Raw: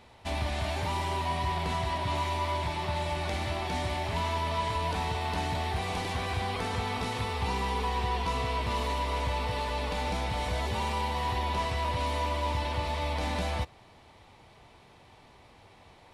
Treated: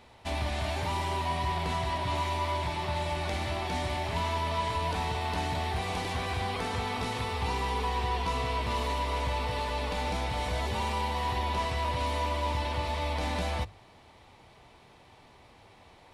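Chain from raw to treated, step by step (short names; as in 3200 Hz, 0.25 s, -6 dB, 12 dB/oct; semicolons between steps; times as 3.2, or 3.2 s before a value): notches 50/100/150/200 Hz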